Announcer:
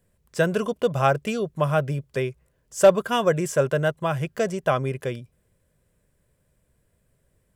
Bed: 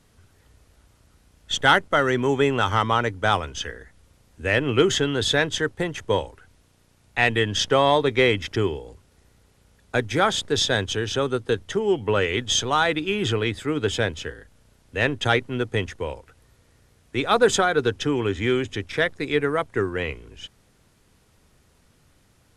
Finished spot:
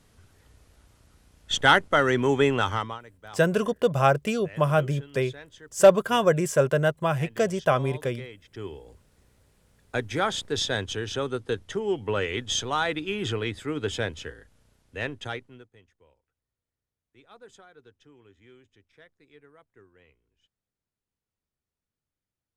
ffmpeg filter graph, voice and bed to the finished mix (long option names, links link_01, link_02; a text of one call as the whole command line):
ffmpeg -i stem1.wav -i stem2.wav -filter_complex "[0:a]adelay=3000,volume=0dB[link_01];[1:a]volume=17.5dB,afade=type=out:start_time=2.52:duration=0.48:silence=0.0707946,afade=type=in:start_time=8.47:duration=0.55:silence=0.11885,afade=type=out:start_time=14.63:duration=1.06:silence=0.0473151[link_02];[link_01][link_02]amix=inputs=2:normalize=0" out.wav